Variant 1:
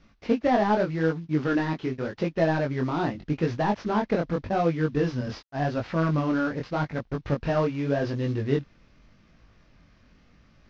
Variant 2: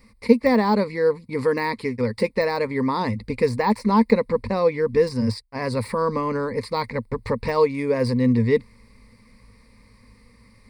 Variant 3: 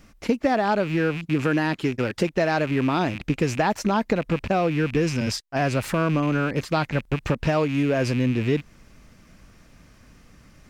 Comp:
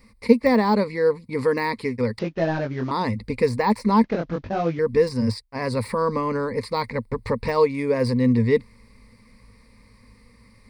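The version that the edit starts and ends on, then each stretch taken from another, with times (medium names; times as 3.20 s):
2
2.19–2.91 s: from 1
4.04–4.79 s: from 1
not used: 3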